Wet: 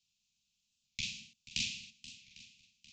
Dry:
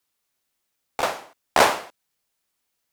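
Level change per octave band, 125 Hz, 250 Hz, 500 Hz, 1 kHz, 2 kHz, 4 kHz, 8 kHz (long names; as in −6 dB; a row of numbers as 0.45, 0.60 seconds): −9.0 dB, −18.0 dB, below −40 dB, below −40 dB, −17.0 dB, −7.5 dB, −11.0 dB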